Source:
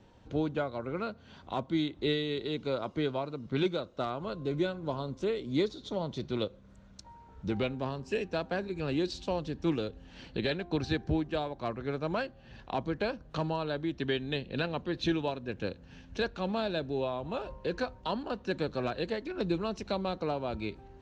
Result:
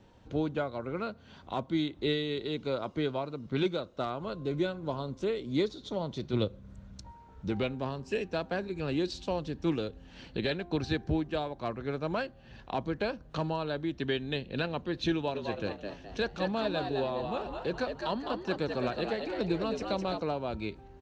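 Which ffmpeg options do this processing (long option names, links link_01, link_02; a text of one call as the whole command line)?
ffmpeg -i in.wav -filter_complex "[0:a]asettb=1/sr,asplit=3[link_01][link_02][link_03];[link_01]atrim=end=6.334[link_04];[link_02]atrim=start=6.33:end=7.11,asetpts=PTS-STARTPTS,afade=type=in:duration=0.004:curve=qsin,afade=type=out:start_time=0.776:duration=0.004:curve=qsin,equalizer=frequency=80:width=0.43:gain=10[link_05];[link_03]atrim=start=7.106[link_06];[link_04][link_05]acrossfade=duration=0.004:curve1=hsin:curve2=qsin[link_07];[link_07][link_06]acrossfade=duration=0.004:curve1=qsin:curve2=hsin,asplit=3[link_08][link_09][link_10];[link_08]afade=type=out:start_time=15.34:duration=0.02[link_11];[link_09]asplit=5[link_12][link_13][link_14][link_15][link_16];[link_13]adelay=210,afreqshift=94,volume=-5.5dB[link_17];[link_14]adelay=420,afreqshift=188,volume=-14.4dB[link_18];[link_15]adelay=630,afreqshift=282,volume=-23.2dB[link_19];[link_16]adelay=840,afreqshift=376,volume=-32.1dB[link_20];[link_12][link_17][link_18][link_19][link_20]amix=inputs=5:normalize=0,afade=type=in:start_time=15.34:duration=0.02,afade=type=out:start_time=20.19:duration=0.02[link_21];[link_10]afade=type=in:start_time=20.19:duration=0.02[link_22];[link_11][link_21][link_22]amix=inputs=3:normalize=0" out.wav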